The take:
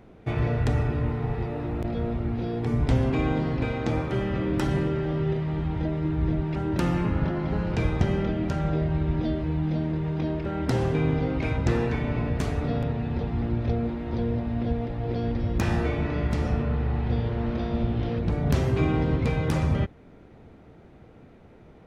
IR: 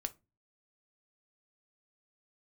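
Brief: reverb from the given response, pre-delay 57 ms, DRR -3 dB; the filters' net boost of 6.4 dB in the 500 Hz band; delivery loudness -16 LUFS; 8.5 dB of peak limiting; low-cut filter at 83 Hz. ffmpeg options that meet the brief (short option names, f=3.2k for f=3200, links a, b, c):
-filter_complex "[0:a]highpass=83,equalizer=f=500:t=o:g=8,alimiter=limit=-17.5dB:level=0:latency=1,asplit=2[a][b];[1:a]atrim=start_sample=2205,adelay=57[c];[b][c]afir=irnorm=-1:irlink=0,volume=4dB[d];[a][d]amix=inputs=2:normalize=0,volume=6dB"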